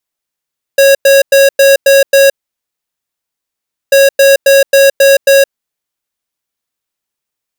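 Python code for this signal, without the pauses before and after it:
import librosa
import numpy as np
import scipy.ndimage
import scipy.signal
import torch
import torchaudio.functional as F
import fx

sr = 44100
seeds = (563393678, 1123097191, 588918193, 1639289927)

y = fx.beep_pattern(sr, wave='square', hz=550.0, on_s=0.17, off_s=0.1, beeps=6, pause_s=1.62, groups=2, level_db=-5.0)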